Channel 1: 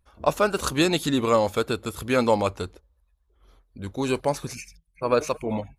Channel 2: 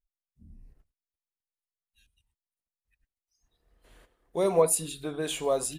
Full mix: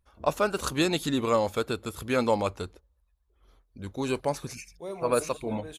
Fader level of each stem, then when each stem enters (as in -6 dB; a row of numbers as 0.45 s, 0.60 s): -4.0 dB, -11.5 dB; 0.00 s, 0.45 s